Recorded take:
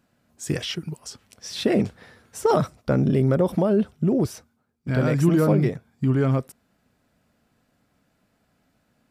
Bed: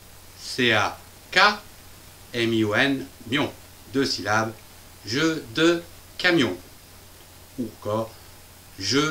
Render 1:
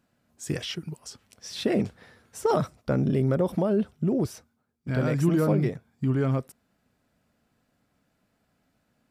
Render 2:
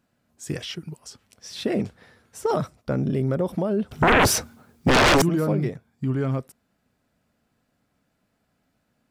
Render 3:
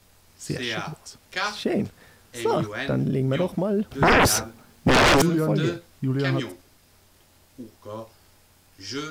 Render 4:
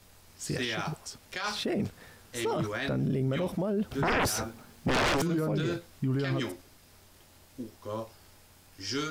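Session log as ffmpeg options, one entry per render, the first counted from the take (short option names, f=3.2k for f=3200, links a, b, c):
-af "volume=-4dB"
-filter_complex "[0:a]asettb=1/sr,asplit=3[a][b][c];[a]atrim=end=3.914[d];[b]atrim=start=3.91:end=5.22,asetpts=PTS-STARTPTS,afade=t=in:d=0.004:c=qsin,afade=t=out:st=1.306:d=0.004:c=qsin,aeval=exprs='0.224*sin(PI/2*8.91*val(0)/0.224)':c=same[e];[c]atrim=start=5.216[f];[d][e]acrossfade=d=0.004:c1=hsin:c2=qsin[g];[g][f]acrossfade=d=0.004:c1=qsin:c2=hsin"
-filter_complex "[1:a]volume=-10.5dB[a];[0:a][a]amix=inputs=2:normalize=0"
-af "alimiter=limit=-22.5dB:level=0:latency=1:release=17"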